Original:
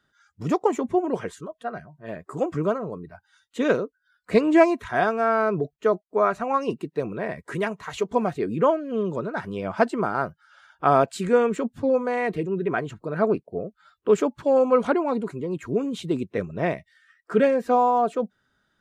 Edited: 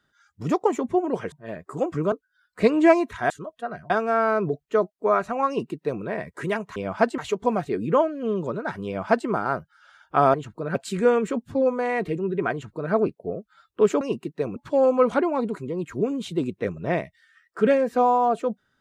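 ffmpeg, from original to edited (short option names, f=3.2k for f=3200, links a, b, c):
-filter_complex "[0:a]asplit=11[a][b][c][d][e][f][g][h][i][j][k];[a]atrim=end=1.322[l];[b]atrim=start=1.918:end=2.722[m];[c]atrim=start=3.828:end=5.012[n];[d]atrim=start=1.318:end=1.922[o];[e]atrim=start=5.008:end=7.872[p];[f]atrim=start=9.548:end=9.972[q];[g]atrim=start=7.868:end=11.032[r];[h]atrim=start=12.798:end=13.212[s];[i]atrim=start=11.028:end=14.292[t];[j]atrim=start=6.588:end=7.142[u];[k]atrim=start=14.288[v];[l][m]acrossfade=d=0.004:c1=hsin:c2=hsin[w];[w][n]acrossfade=d=0.004:c1=hsin:c2=hsin[x];[x][o]acrossfade=d=0.004:c1=hsin:c2=hsin[y];[y][p]acrossfade=d=0.004:c1=hsin:c2=hsin[z];[z][q]acrossfade=d=0.004:c1=hsin:c2=hsin[aa];[aa][r]acrossfade=d=0.004:c1=hsin:c2=hsin[ab];[ab][s]acrossfade=d=0.004:c1=hsin:c2=hsin[ac];[ac][t]acrossfade=d=0.004:c1=hsin:c2=hsin[ad];[ad][u]acrossfade=d=0.004:c1=hsin:c2=hsin[ae];[ae][v]acrossfade=d=0.004:c1=hsin:c2=hsin"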